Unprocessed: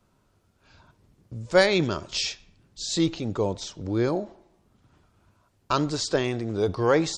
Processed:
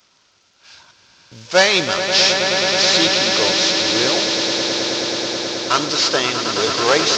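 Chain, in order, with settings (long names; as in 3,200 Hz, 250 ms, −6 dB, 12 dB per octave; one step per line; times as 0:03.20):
variable-slope delta modulation 32 kbit/s
spectral tilt +4.5 dB per octave
echo that builds up and dies away 107 ms, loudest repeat 8, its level −9.5 dB
level +8 dB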